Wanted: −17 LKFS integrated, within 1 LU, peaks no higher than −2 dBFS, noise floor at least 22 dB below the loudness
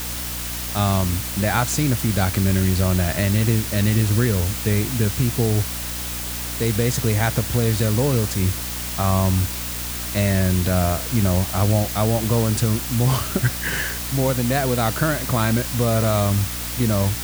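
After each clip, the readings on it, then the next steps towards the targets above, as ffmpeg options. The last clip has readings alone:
mains hum 60 Hz; hum harmonics up to 300 Hz; level of the hum −31 dBFS; background noise floor −28 dBFS; target noise floor −43 dBFS; integrated loudness −20.5 LKFS; sample peak −4.0 dBFS; target loudness −17.0 LKFS
→ -af "bandreject=frequency=60:width_type=h:width=4,bandreject=frequency=120:width_type=h:width=4,bandreject=frequency=180:width_type=h:width=4,bandreject=frequency=240:width_type=h:width=4,bandreject=frequency=300:width_type=h:width=4"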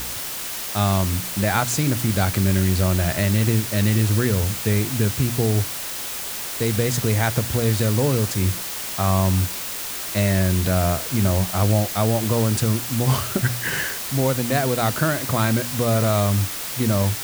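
mains hum none found; background noise floor −30 dBFS; target noise floor −43 dBFS
→ -af "afftdn=noise_reduction=13:noise_floor=-30"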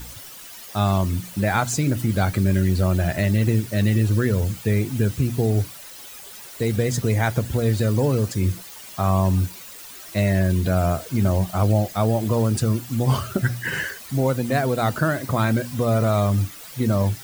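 background noise floor −40 dBFS; target noise floor −44 dBFS
→ -af "afftdn=noise_reduction=6:noise_floor=-40"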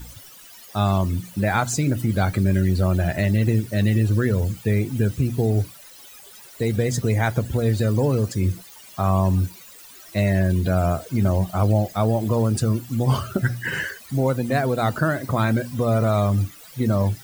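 background noise floor −45 dBFS; integrated loudness −22.0 LKFS; sample peak −6.0 dBFS; target loudness −17.0 LKFS
→ -af "volume=5dB,alimiter=limit=-2dB:level=0:latency=1"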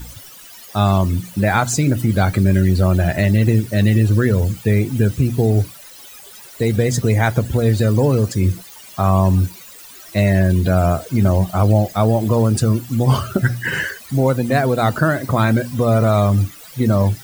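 integrated loudness −17.0 LKFS; sample peak −2.0 dBFS; background noise floor −40 dBFS

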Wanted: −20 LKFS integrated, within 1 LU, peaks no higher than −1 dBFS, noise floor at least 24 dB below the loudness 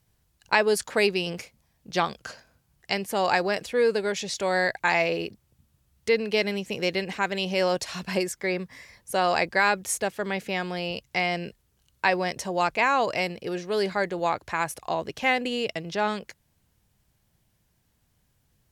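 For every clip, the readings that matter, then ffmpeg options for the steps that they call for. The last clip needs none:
integrated loudness −26.0 LKFS; sample peak −4.5 dBFS; target loudness −20.0 LKFS
→ -af "volume=6dB,alimiter=limit=-1dB:level=0:latency=1"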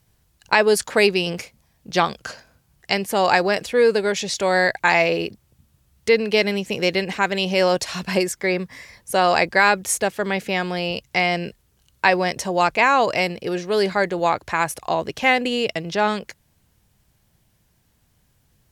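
integrated loudness −20.5 LKFS; sample peak −1.0 dBFS; background noise floor −64 dBFS

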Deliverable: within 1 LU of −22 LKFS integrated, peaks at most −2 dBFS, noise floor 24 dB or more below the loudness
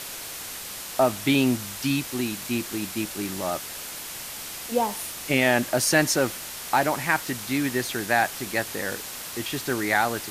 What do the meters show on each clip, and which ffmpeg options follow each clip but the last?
background noise floor −37 dBFS; target noise floor −50 dBFS; integrated loudness −25.5 LKFS; sample peak −6.5 dBFS; target loudness −22.0 LKFS
→ -af "afftdn=noise_reduction=13:noise_floor=-37"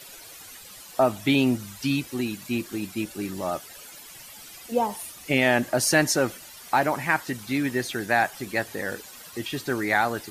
background noise floor −45 dBFS; target noise floor −50 dBFS
→ -af "afftdn=noise_reduction=6:noise_floor=-45"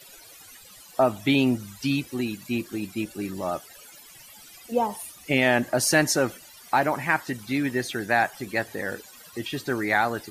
background noise floor −49 dBFS; target noise floor −50 dBFS
→ -af "afftdn=noise_reduction=6:noise_floor=-49"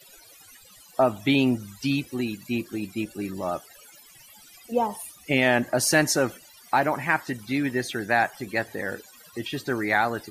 background noise floor −52 dBFS; integrated loudness −25.5 LKFS; sample peak −7.0 dBFS; target loudness −22.0 LKFS
→ -af "volume=3.5dB"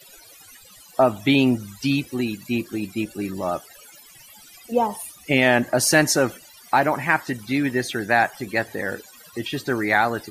integrated loudness −22.0 LKFS; sample peak −3.5 dBFS; background noise floor −48 dBFS

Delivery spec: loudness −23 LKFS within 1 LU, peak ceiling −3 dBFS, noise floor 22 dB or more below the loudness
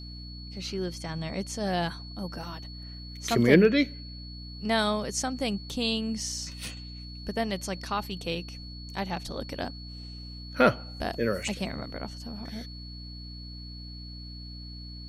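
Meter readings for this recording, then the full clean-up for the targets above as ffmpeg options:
mains hum 60 Hz; hum harmonics up to 300 Hz; level of the hum −39 dBFS; interfering tone 4,400 Hz; level of the tone −45 dBFS; integrated loudness −29.5 LKFS; sample peak −5.0 dBFS; target loudness −23.0 LKFS
→ -af "bandreject=frequency=60:width_type=h:width=4,bandreject=frequency=120:width_type=h:width=4,bandreject=frequency=180:width_type=h:width=4,bandreject=frequency=240:width_type=h:width=4,bandreject=frequency=300:width_type=h:width=4"
-af "bandreject=frequency=4400:width=30"
-af "volume=6.5dB,alimiter=limit=-3dB:level=0:latency=1"

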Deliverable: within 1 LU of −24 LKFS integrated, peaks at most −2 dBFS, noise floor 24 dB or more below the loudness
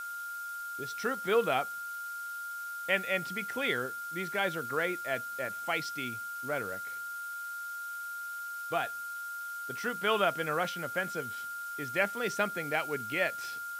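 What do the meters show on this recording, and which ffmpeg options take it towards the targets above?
interfering tone 1,400 Hz; level of the tone −37 dBFS; background noise floor −40 dBFS; target noise floor −58 dBFS; integrated loudness −33.5 LKFS; sample peak −14.0 dBFS; target loudness −24.0 LKFS
→ -af "bandreject=frequency=1400:width=30"
-af "afftdn=noise_reduction=18:noise_floor=-40"
-af "volume=9.5dB"

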